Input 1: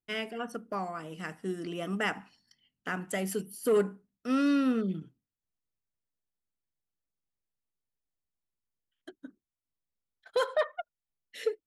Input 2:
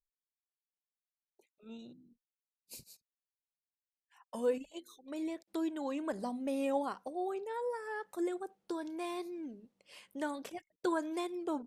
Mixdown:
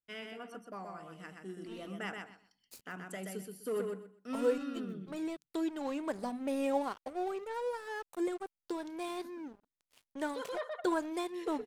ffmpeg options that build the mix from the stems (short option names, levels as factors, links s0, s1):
-filter_complex "[0:a]volume=0.299,asplit=2[s0][s1];[s1]volume=0.596[s2];[1:a]aeval=exprs='sgn(val(0))*max(abs(val(0))-0.00316,0)':c=same,volume=1.26,asplit=2[s3][s4];[s4]apad=whole_len=514460[s5];[s0][s5]sidechaincompress=threshold=0.0141:ratio=8:attack=16:release=485[s6];[s2]aecho=0:1:126|252|378:1|0.21|0.0441[s7];[s6][s3][s7]amix=inputs=3:normalize=0"